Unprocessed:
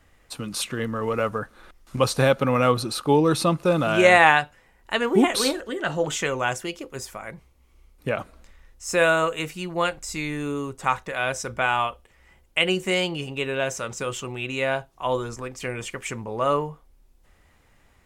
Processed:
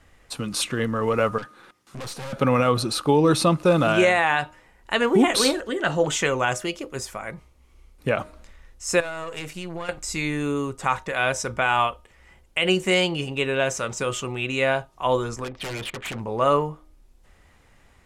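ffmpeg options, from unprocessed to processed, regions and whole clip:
-filter_complex "[0:a]asettb=1/sr,asplit=3[a][b][c];[a]atrim=end=1.384[d];[b]atrim=start=1.38:end=2.33,asetpts=PTS-STARTPTS,afade=t=in:d=0.004:c=qsin,afade=t=out:st=0.946:d=0.004:c=qsin,highpass=f=110:w=0.5412,highpass=f=110:w=1.3066,bandreject=f=630:w=5.1,aeval=exprs='(tanh(63.1*val(0)+0.5)-tanh(0.5))/63.1':c=same[e];[c]atrim=start=2.326[f];[d][e]acrossfade=d=0.004:c1=hsin:c2=qsin[g];[g][f]acrossfade=d=0.004:c1=qsin:c2=hsin,asettb=1/sr,asplit=3[h][i][j];[h]atrim=end=9.004[k];[i]atrim=start=9:end=9.89,asetpts=PTS-STARTPTS,afade=t=in:d=0.004:c=qsin,afade=t=out:st=0.886:d=0.004:c=qsin,aeval=exprs='if(lt(val(0),0),0.447*val(0),val(0))':c=same,acompressor=threshold=-30dB:ratio=8:attack=3.2:release=140:knee=1:detection=peak[l];[j]atrim=start=9.886[m];[k][l]acrossfade=d=0.004:c1=hsin:c2=qsin[n];[n][m]acrossfade=d=0.004:c1=qsin:c2=hsin,asettb=1/sr,asplit=3[o][p][q];[o]atrim=end=15.444[r];[p]atrim=start=15.44:end=16.2,asetpts=PTS-STARTPTS,afade=t=in:d=0.004:c=qsin,afade=t=out:st=0.756:d=0.004:c=qsin,lowpass=f=3.7k:t=q:w=3,adynamicsmooth=sensitivity=6:basefreq=1.2k,aeval=exprs='0.0355*(abs(mod(val(0)/0.0355+3,4)-2)-1)':c=same[s];[q]atrim=start=16.196[t];[r][s]acrossfade=d=0.004:c1=hsin:c2=qsin[u];[u][t]acrossfade=d=0.004:c1=qsin:c2=hsin,lowpass=12k,bandreject=f=308.4:t=h:w=4,bandreject=f=616.8:t=h:w=4,bandreject=f=925.2:t=h:w=4,bandreject=f=1.2336k:t=h:w=4,alimiter=level_in=10.5dB:limit=-1dB:release=50:level=0:latency=1,volume=-7.5dB"

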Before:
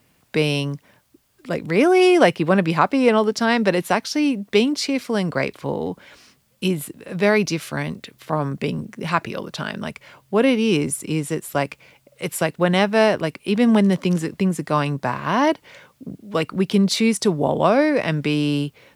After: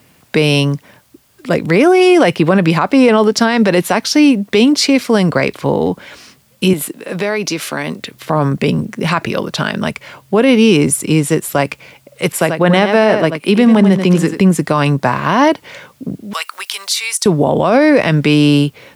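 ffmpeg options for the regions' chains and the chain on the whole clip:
-filter_complex "[0:a]asettb=1/sr,asplit=3[a][b][c];[a]atrim=end=6.734[d];[b]atrim=start=6.73:end=7.99,asetpts=PTS-STARTPTS,afade=t=in:d=0.004:c=qsin,afade=t=out:st=1.256:d=0.004:c=qsin,highpass=240,acompressor=threshold=-25dB:ratio=5:attack=3.2:release=140:knee=1:detection=peak[e];[c]atrim=start=7.986[f];[d][e]acrossfade=d=0.004:c1=hsin:c2=qsin[g];[g][f]acrossfade=d=0.004:c1=qsin:c2=hsin,asettb=1/sr,asplit=3[h][i][j];[h]atrim=end=12.324[k];[i]atrim=start=12.32:end=14.39,asetpts=PTS-STARTPTS,afade=t=in:d=0.004:c=qsin,afade=t=out:st=2.066:d=0.004:c=qsin,highpass=130,aecho=1:1:87:0.316,atrim=end_sample=91287,adynamicequalizer=threshold=0.0158:dfrequency=3300:dqfactor=0.7:tfrequency=3300:tqfactor=0.7:attack=5:release=100:ratio=0.375:range=3.5:mode=cutabove:tftype=highshelf[l];[j]atrim=start=14.386[m];[k][l]acrossfade=d=0.004:c1=hsin:c2=qsin[n];[n][m]acrossfade=d=0.004:c1=qsin:c2=hsin,asettb=1/sr,asplit=3[o][p][q];[o]atrim=end=16.334[r];[p]atrim=start=16.33:end=17.26,asetpts=PTS-STARTPTS,afade=t=in:d=0.004:c=qsin,afade=t=out:st=0.926:d=0.004:c=qsin,highpass=f=920:w=0.5412,highpass=f=920:w=1.3066,highshelf=f=5k:g=11.5,acompressor=threshold=-32dB:ratio=2:attack=3.2:release=140:knee=1:detection=peak[s];[q]atrim=start=17.256[t];[r][s]acrossfade=d=0.004:c1=hsin:c2=qsin[u];[u][t]acrossfade=d=0.004:c1=qsin:c2=hsin,highpass=58,alimiter=level_in=12dB:limit=-1dB:release=50:level=0:latency=1,volume=-1dB"

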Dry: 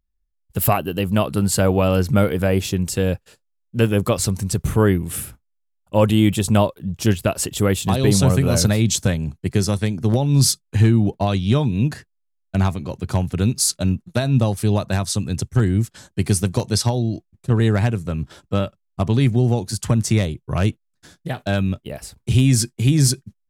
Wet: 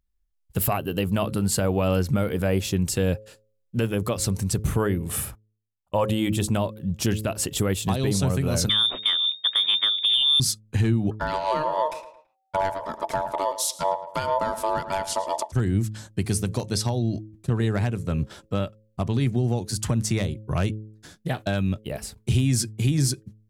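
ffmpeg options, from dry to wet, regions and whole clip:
-filter_complex "[0:a]asettb=1/sr,asplit=3[a][b][c];[a]atrim=end=5.094[d];[b]atrim=start=5.09:end=6.11,asetpts=PTS-STARTPTS,afade=t=in:d=0.004:c=qsin,afade=t=out:st=1.016:d=0.004:c=qsin,agate=range=-16dB:threshold=-44dB:ratio=16:release=100:detection=peak,equalizer=f=910:w=1.9:g=9,aecho=1:1:1.7:0.31,atrim=end_sample=44982[e];[c]atrim=start=6.106[f];[d][e]acrossfade=d=0.004:c1=hsin:c2=qsin[g];[g][f]acrossfade=d=0.004:c1=qsin:c2=hsin,asettb=1/sr,asplit=3[h][i][j];[h]atrim=end=8.694[k];[i]atrim=start=8.69:end=10.4,asetpts=PTS-STARTPTS,afade=t=in:d=0.004:c=qsin,afade=t=out:st=1.706:d=0.004:c=qsin,aeval=exprs='if(lt(val(0),0),0.708*val(0),val(0))':c=same,lowpass=f=3.1k:t=q:w=0.5098,lowpass=f=3.1k:t=q:w=0.6013,lowpass=f=3.1k:t=q:w=0.9,lowpass=f=3.1k:t=q:w=2.563,afreqshift=-3700,acontrast=44[l];[j]atrim=start=10.396[m];[k][l]acrossfade=d=0.004:c1=hsin:c2=qsin[n];[n][m]acrossfade=d=0.004:c1=qsin:c2=hsin,asettb=1/sr,asplit=3[o][p][q];[o]atrim=end=11.114[r];[p]atrim=start=11.11:end=15.52,asetpts=PTS-STARTPTS,afade=t=in:d=0.004:c=qsin,afade=t=out:st=4.406:d=0.004:c=qsin,aeval=exprs='val(0)*sin(2*PI*770*n/s)':c=same,asplit=2[s][t];[t]adelay=110,lowpass=f=3.6k:p=1,volume=-13dB,asplit=2[u][v];[v]adelay=110,lowpass=f=3.6k:p=1,volume=0.34,asplit=2[w][x];[x]adelay=110,lowpass=f=3.6k:p=1,volume=0.34[y];[s][u][w][y]amix=inputs=4:normalize=0,atrim=end_sample=194481[z];[q]atrim=start=15.516[aa];[r][z]acrossfade=d=0.004:c1=hsin:c2=qsin[ab];[ab][aa]acrossfade=d=0.004:c1=qsin:c2=hsin,bandreject=f=107.4:t=h:w=4,bandreject=f=214.8:t=h:w=4,bandreject=f=322.2:t=h:w=4,bandreject=f=429.6:t=h:w=4,bandreject=f=537:t=h:w=4,alimiter=limit=-13.5dB:level=0:latency=1:release=338"

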